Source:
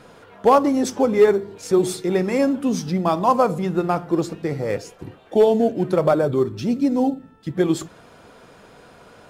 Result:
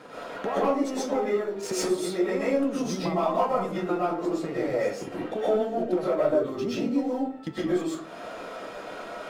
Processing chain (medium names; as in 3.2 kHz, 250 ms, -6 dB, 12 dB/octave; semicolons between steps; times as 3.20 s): high-pass 230 Hz 12 dB/octave; treble shelf 3.9 kHz -7.5 dB; waveshaping leveller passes 1; compression 12:1, threshold -33 dBFS, peak gain reduction 24.5 dB; flange 0.32 Hz, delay 6.5 ms, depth 8 ms, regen -69%; reverberation RT60 0.40 s, pre-delay 85 ms, DRR -8.5 dB; trim +6.5 dB